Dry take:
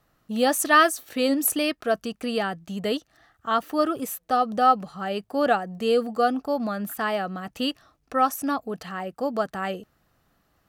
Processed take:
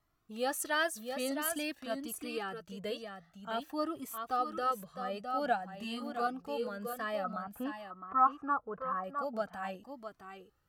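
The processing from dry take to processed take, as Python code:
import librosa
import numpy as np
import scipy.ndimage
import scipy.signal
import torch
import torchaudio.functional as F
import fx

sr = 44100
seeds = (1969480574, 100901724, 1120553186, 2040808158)

y = fx.doubler(x, sr, ms=30.0, db=-3.5, at=(5.72, 6.27))
y = fx.lowpass_res(y, sr, hz=1200.0, q=4.8, at=(7.24, 9.04))
y = y + 10.0 ** (-7.5 / 20.0) * np.pad(y, (int(661 * sr / 1000.0), 0))[:len(y)]
y = fx.comb_cascade(y, sr, direction='rising', hz=0.5)
y = F.gain(torch.from_numpy(y), -7.5).numpy()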